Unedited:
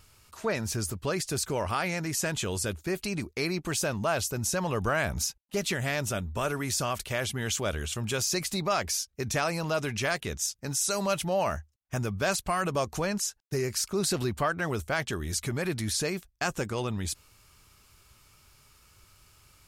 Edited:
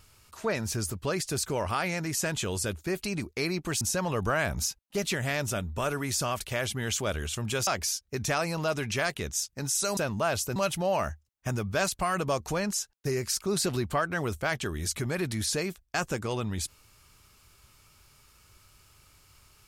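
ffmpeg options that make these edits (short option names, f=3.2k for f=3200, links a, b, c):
-filter_complex "[0:a]asplit=5[a][b][c][d][e];[a]atrim=end=3.812[f];[b]atrim=start=4.398:end=8.262[g];[c]atrim=start=8.728:end=11.032[h];[d]atrim=start=3.808:end=4.402[i];[e]atrim=start=11.028[j];[f][g]acrossfade=d=0.004:c1=hsin:c2=hsin[k];[k][h]acrossfade=d=0.004:c1=hsin:c2=hsin[l];[l][i]acrossfade=d=0.004:c1=hsin:c2=hsin[m];[m][j]acrossfade=d=0.004:c1=hsin:c2=hsin"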